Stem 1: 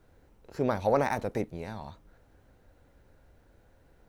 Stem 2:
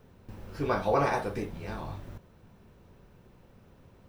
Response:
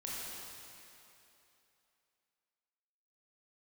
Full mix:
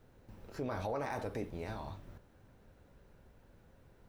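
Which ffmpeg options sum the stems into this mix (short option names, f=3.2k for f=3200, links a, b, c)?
-filter_complex "[0:a]volume=-3.5dB[a];[1:a]volume=-9.5dB[b];[a][b]amix=inputs=2:normalize=0,alimiter=level_in=4.5dB:limit=-24dB:level=0:latency=1:release=51,volume=-4.5dB"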